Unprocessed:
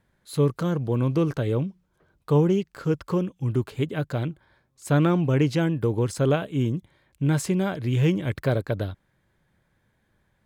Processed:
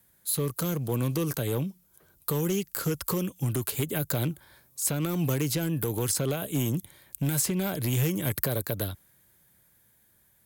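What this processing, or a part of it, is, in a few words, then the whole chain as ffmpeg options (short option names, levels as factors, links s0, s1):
FM broadcast chain: -filter_complex "[0:a]highpass=41,dynaudnorm=f=500:g=9:m=2,acrossover=split=98|920|1900|5300[s0][s1][s2][s3][s4];[s0]acompressor=threshold=0.0158:ratio=4[s5];[s1]acompressor=threshold=0.0891:ratio=4[s6];[s2]acompressor=threshold=0.0141:ratio=4[s7];[s3]acompressor=threshold=0.00708:ratio=4[s8];[s4]acompressor=threshold=0.00316:ratio=4[s9];[s5][s6][s7][s8][s9]amix=inputs=5:normalize=0,aemphasis=mode=production:type=50fm,alimiter=limit=0.158:level=0:latency=1:release=126,asoftclip=type=hard:threshold=0.112,lowpass=f=15000:w=0.5412,lowpass=f=15000:w=1.3066,aemphasis=mode=production:type=50fm,volume=0.794"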